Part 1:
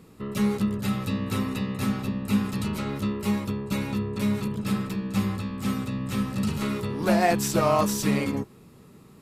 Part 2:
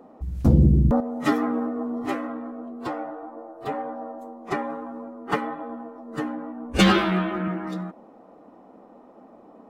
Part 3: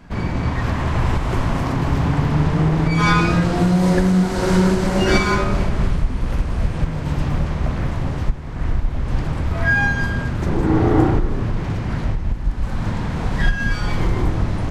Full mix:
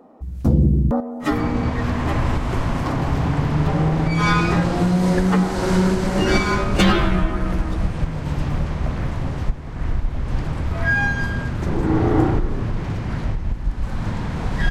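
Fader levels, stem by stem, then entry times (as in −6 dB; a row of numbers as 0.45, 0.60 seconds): muted, +0.5 dB, −2.0 dB; muted, 0.00 s, 1.20 s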